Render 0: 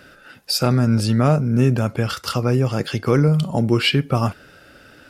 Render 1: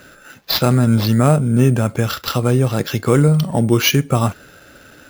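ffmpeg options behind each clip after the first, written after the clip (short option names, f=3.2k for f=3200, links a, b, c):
-af "acrusher=samples=5:mix=1:aa=0.000001,volume=3dB"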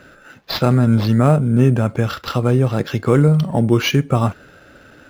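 -af "lowpass=f=2.5k:p=1"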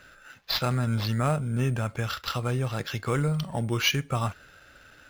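-af "equalizer=f=280:w=0.37:g=-13.5,volume=-2.5dB"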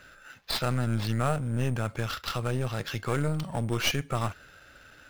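-af "aeval=exprs='clip(val(0),-1,0.0211)':c=same"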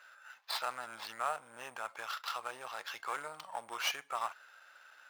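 -af "highpass=f=910:t=q:w=2.1,volume=-7.5dB"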